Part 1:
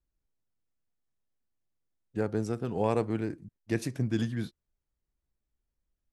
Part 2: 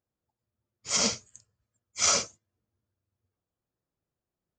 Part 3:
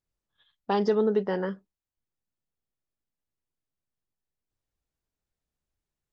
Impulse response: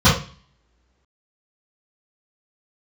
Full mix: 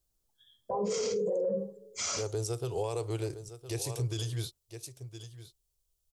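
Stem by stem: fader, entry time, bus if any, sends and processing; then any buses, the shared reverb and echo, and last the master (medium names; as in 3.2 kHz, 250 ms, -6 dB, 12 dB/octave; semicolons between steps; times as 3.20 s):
+1.5 dB, 0.00 s, no send, echo send -14.5 dB, FFT filter 130 Hz 0 dB, 220 Hz -26 dB, 390 Hz +1 dB, 590 Hz -2 dB, 1.2 kHz -3 dB, 1.7 kHz -11 dB, 3.2 kHz +6 dB, 7.8 kHz +13 dB
-1.5 dB, 0.00 s, no send, no echo send, none
-3.5 dB, 0.00 s, send -7 dB, no echo send, resonances exaggerated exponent 3; auto-wah 560–2400 Hz, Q 2.9, down, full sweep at -32 dBFS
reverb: on, pre-delay 3 ms
echo: delay 1012 ms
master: peak limiter -24.5 dBFS, peak gain reduction 17.5 dB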